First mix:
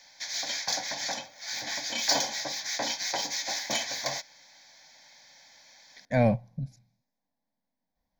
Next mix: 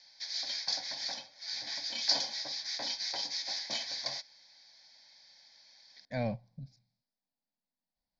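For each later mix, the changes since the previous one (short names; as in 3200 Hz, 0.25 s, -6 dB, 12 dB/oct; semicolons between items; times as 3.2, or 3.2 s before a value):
master: add ladder low-pass 5200 Hz, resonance 65%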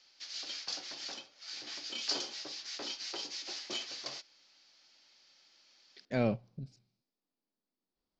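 background -6.5 dB; master: remove fixed phaser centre 1900 Hz, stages 8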